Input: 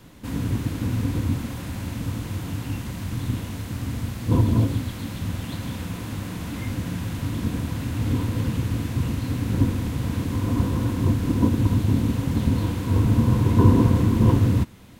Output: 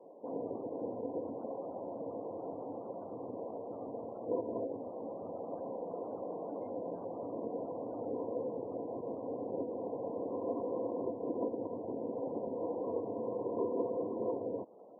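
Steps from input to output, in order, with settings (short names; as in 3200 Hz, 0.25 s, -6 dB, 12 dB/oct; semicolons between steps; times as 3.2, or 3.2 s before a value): compressor 5:1, threshold -22 dBFS, peak gain reduction 12 dB; Butterworth band-pass 560 Hz, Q 1.8; spectral gate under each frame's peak -25 dB strong; gain +6 dB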